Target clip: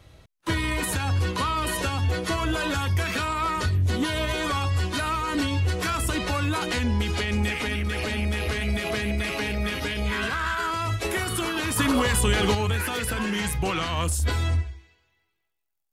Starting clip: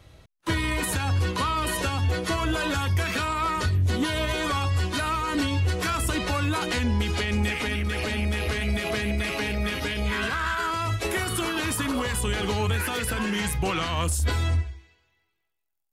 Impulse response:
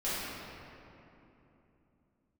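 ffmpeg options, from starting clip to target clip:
-filter_complex "[0:a]asettb=1/sr,asplit=3[a][b][c];[a]atrim=end=11.764[d];[b]atrim=start=11.76:end=12.55,asetpts=PTS-STARTPTS,afade=t=in:d=0.004:c=qsin,afade=t=out:st=0.786:d=0.004:c=qsin,acontrast=26[e];[c]atrim=start=12.546[f];[d][e]acrossfade=d=0.004:c1=hsin:c2=qsin[g];[g][f]acrossfade=d=0.004:c1=qsin:c2=hsin"

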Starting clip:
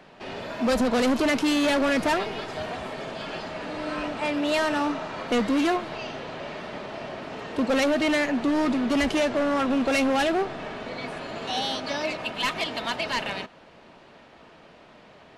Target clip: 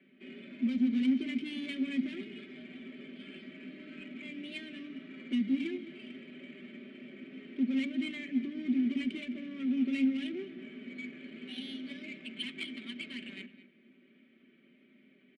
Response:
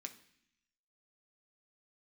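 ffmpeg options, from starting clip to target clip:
-filter_complex "[0:a]acrossover=split=350|2400[a][b][c];[b]acompressor=threshold=-34dB:ratio=6[d];[a][d][c]amix=inputs=3:normalize=0,asplit=3[e][f][g];[e]bandpass=f=270:t=q:w=8,volume=0dB[h];[f]bandpass=f=2.29k:t=q:w=8,volume=-6dB[i];[g]bandpass=f=3.01k:t=q:w=8,volume=-9dB[j];[h][i][j]amix=inputs=3:normalize=0,aecho=1:1:5.2:0.76,aecho=1:1:212:0.2,asplit=2[k][l];[1:a]atrim=start_sample=2205[m];[l][m]afir=irnorm=-1:irlink=0,volume=-0.5dB[n];[k][n]amix=inputs=2:normalize=0,adynamicsmooth=sensitivity=3.5:basefreq=2.5k,volume=-2dB"

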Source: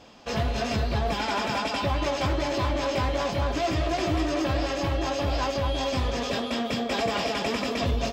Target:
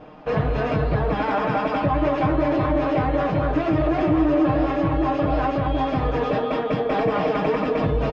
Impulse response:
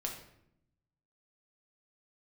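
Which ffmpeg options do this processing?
-filter_complex "[0:a]lowpass=1.4k,aecho=1:1:6.5:0.87,asplit=2[a][b];[b]alimiter=limit=-21.5dB:level=0:latency=1,volume=2dB[c];[a][c]amix=inputs=2:normalize=0"

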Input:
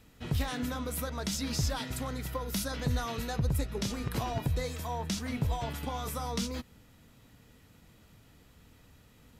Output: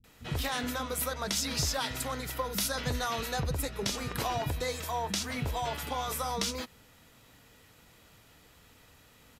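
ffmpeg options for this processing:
-filter_complex "[0:a]lowshelf=f=280:g=-9.5,acrossover=split=230[a][b];[b]adelay=40[c];[a][c]amix=inputs=2:normalize=0,volume=5dB"

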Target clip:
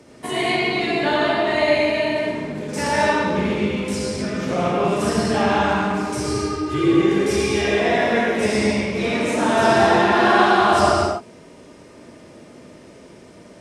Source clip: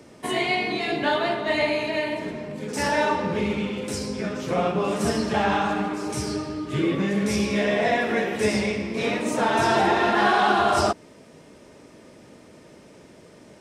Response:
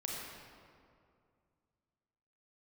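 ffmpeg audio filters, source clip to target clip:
-filter_complex "[0:a]asettb=1/sr,asplit=3[a][b][c];[a]atrim=end=6.244[d];[b]atrim=start=6.24:end=7.8,asetpts=PTS-STARTPTS,afade=t=in:d=0.004:c=qsin,afade=t=out:st=1.556:d=0.004:c=qsin,aecho=1:1:2.5:0.62,atrim=end_sample=68796[e];[c]atrim=start=7.796[f];[d][e]acrossfade=d=0.004:c1=hsin:c2=qsin[g];[g][f]acrossfade=d=0.004:c1=qsin:c2=hsin[h];[1:a]atrim=start_sample=2205,atrim=end_sample=6615,asetrate=23373,aresample=44100[i];[h][i]afir=irnorm=-1:irlink=0"

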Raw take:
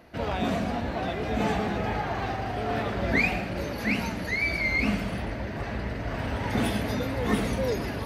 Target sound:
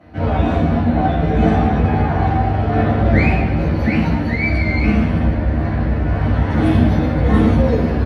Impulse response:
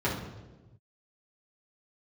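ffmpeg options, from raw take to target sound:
-filter_complex "[0:a]highshelf=f=11k:g=-11.5,asplit=2[a][b];[b]adelay=13,volume=-4dB[c];[a][c]amix=inputs=2:normalize=0[d];[1:a]atrim=start_sample=2205,asetrate=35280,aresample=44100[e];[d][e]afir=irnorm=-1:irlink=0,volume=-6dB"

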